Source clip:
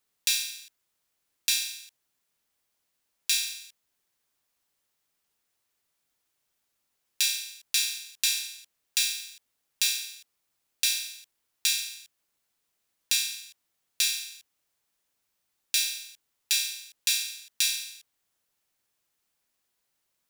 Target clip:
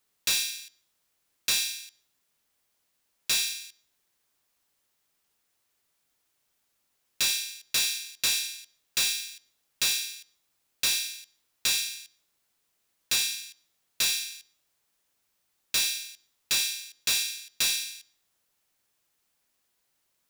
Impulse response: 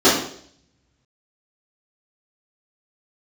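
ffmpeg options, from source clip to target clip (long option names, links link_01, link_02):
-filter_complex "[0:a]volume=23.5dB,asoftclip=hard,volume=-23.5dB,asplit=2[link_01][link_02];[1:a]atrim=start_sample=2205,adelay=78[link_03];[link_02][link_03]afir=irnorm=-1:irlink=0,volume=-46dB[link_04];[link_01][link_04]amix=inputs=2:normalize=0,volume=3dB"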